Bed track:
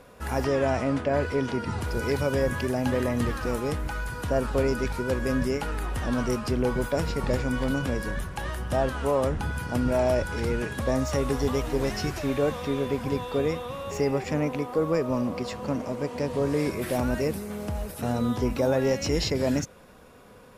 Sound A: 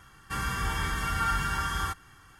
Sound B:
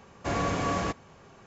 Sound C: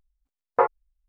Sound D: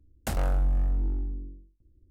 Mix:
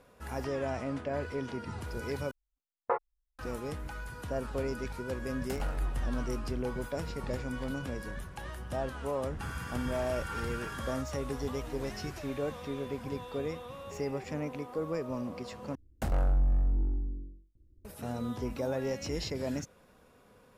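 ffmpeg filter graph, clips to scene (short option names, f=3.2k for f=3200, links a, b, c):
-filter_complex "[4:a]asplit=2[a][b];[0:a]volume=-9.5dB[c];[b]highshelf=f=2.1k:g=-9.5[d];[c]asplit=3[e][f][g];[e]atrim=end=2.314[h];[3:a]atrim=end=1.08,asetpts=PTS-STARTPTS,volume=-10.5dB[i];[f]atrim=start=3.386:end=15.754[j];[d]atrim=end=2.1,asetpts=PTS-STARTPTS,volume=-1.5dB[k];[g]atrim=start=17.846[l];[a]atrim=end=2.1,asetpts=PTS-STARTPTS,volume=-9dB,afade=t=in:d=0.004:c=hsin,afade=t=out:st=2.096:d=0.004:c=hsin,adelay=5230[m];[1:a]atrim=end=2.39,asetpts=PTS-STARTPTS,volume=-12dB,afade=t=in:d=0.004:c=hsin,afade=t=out:st=2.386:d=0.004:c=hsin,adelay=9090[n];[h][i]acrossfade=d=0.004:c1=hsin:c2=hsin[o];[o][j]acrossfade=d=0.004:c1=hsin:c2=hsin[p];[p][k]acrossfade=d=0.004:c1=hsin:c2=hsin[q];[q][l]acrossfade=d=0.004:c1=hsin:c2=hsin[r];[r][m][n]amix=inputs=3:normalize=0"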